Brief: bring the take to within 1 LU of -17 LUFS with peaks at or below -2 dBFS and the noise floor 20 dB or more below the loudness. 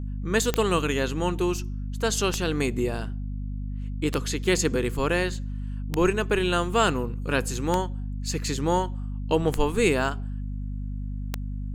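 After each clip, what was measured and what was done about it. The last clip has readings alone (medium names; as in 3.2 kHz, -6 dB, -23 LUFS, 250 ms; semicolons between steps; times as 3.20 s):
clicks found 7; hum 50 Hz; highest harmonic 250 Hz; hum level -29 dBFS; loudness -26.5 LUFS; peak level -7.0 dBFS; loudness target -17.0 LUFS
-> de-click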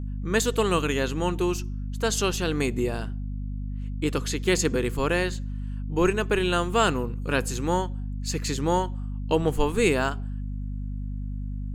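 clicks found 0; hum 50 Hz; highest harmonic 250 Hz; hum level -29 dBFS
-> de-hum 50 Hz, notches 5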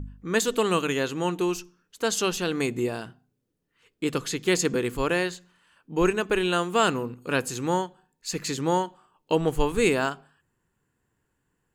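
hum not found; loudness -26.0 LUFS; peak level -8.5 dBFS; loudness target -17.0 LUFS
-> trim +9 dB; peak limiter -2 dBFS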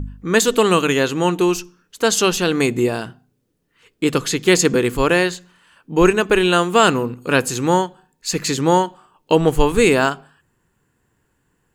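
loudness -17.5 LUFS; peak level -2.0 dBFS; noise floor -68 dBFS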